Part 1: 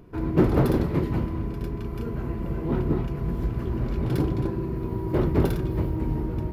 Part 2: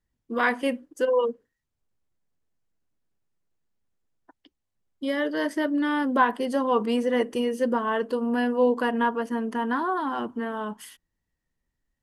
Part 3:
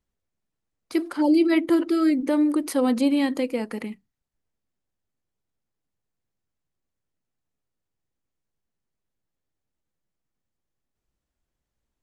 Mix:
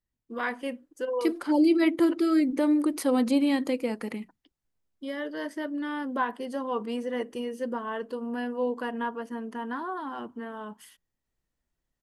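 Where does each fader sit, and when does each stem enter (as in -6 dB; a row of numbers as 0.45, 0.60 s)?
off, -7.5 dB, -2.5 dB; off, 0.00 s, 0.30 s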